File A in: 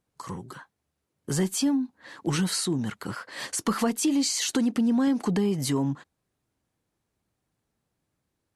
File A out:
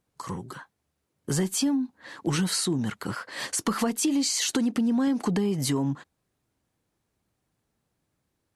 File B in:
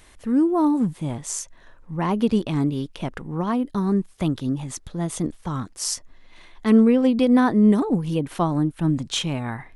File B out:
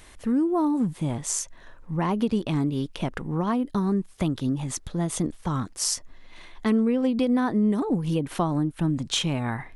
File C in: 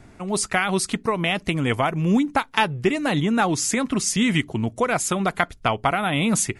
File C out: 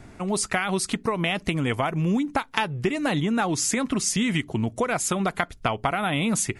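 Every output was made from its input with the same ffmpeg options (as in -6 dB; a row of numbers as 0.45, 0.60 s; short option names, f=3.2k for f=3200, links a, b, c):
-af "acompressor=threshold=-24dB:ratio=3,volume=2dB"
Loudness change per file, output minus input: -0.5, -3.5, -3.0 LU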